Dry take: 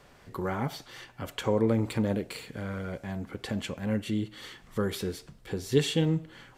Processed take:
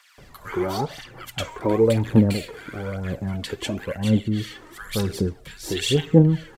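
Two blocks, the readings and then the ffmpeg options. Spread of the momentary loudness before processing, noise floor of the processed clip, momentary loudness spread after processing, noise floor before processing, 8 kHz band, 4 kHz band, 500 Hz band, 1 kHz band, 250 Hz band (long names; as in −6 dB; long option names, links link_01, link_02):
13 LU, −49 dBFS, 17 LU, −57 dBFS, +7.5 dB, +7.0 dB, +7.0 dB, +6.0 dB, +8.0 dB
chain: -filter_complex "[0:a]aphaser=in_gain=1:out_gain=1:delay=3.3:decay=0.6:speed=1:type=triangular,acrossover=split=1300[link_01][link_02];[link_01]adelay=180[link_03];[link_03][link_02]amix=inputs=2:normalize=0,volume=5.5dB"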